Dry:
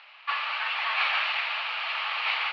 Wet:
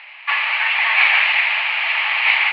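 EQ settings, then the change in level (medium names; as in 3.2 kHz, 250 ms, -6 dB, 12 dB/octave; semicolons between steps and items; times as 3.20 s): tone controls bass +14 dB, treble -12 dB; peaking EQ 930 Hz +14 dB 1.4 oct; resonant high shelf 1.6 kHz +8 dB, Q 3; -1.0 dB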